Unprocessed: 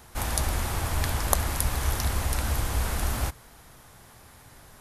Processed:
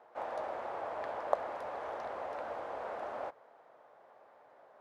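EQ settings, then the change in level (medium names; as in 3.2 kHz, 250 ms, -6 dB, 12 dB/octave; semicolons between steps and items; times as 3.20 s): ladder band-pass 670 Hz, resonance 50%; +6.5 dB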